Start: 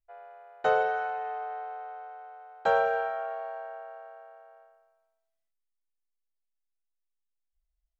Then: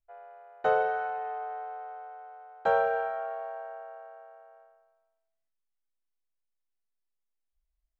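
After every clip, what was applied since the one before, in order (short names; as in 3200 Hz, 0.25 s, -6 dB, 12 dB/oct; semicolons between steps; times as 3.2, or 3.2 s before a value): high shelf 3000 Hz -10 dB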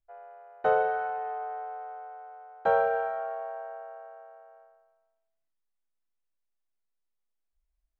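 high shelf 3100 Hz -9.5 dB; gain +1.5 dB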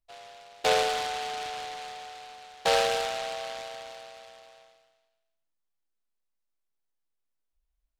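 noise-modulated delay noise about 2600 Hz, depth 0.12 ms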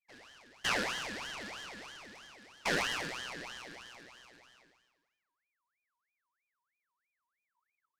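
ring modulator with a swept carrier 1700 Hz, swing 45%, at 3.1 Hz; gain -5.5 dB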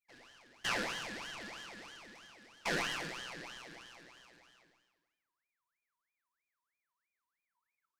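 reverb RT60 0.65 s, pre-delay 6 ms, DRR 10 dB; gain -3.5 dB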